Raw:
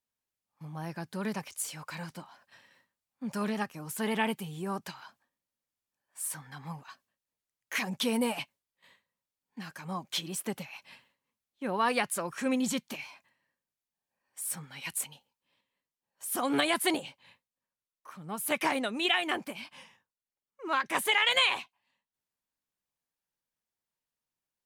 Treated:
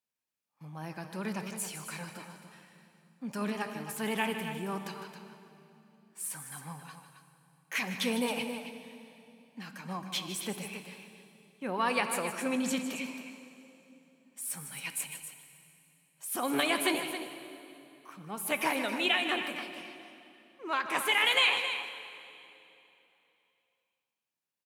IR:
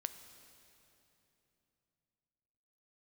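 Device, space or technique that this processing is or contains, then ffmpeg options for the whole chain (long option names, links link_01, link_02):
stadium PA: -filter_complex "[0:a]highpass=120,equalizer=frequency=2500:width_type=o:width=0.32:gain=4,aecho=1:1:154.5|271.1:0.282|0.316[link_01];[1:a]atrim=start_sample=2205[link_02];[link_01][link_02]afir=irnorm=-1:irlink=0"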